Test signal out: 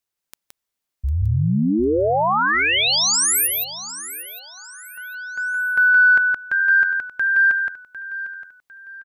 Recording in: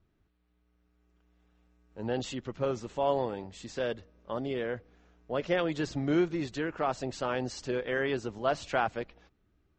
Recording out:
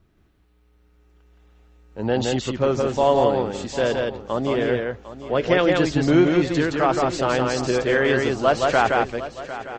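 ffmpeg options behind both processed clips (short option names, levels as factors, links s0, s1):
-filter_complex "[0:a]asplit=2[s0][s1];[s1]aecho=0:1:169:0.708[s2];[s0][s2]amix=inputs=2:normalize=0,acontrast=56,asplit=2[s3][s4];[s4]aecho=0:1:752|1504|2256:0.2|0.0678|0.0231[s5];[s3][s5]amix=inputs=2:normalize=0,volume=1.58"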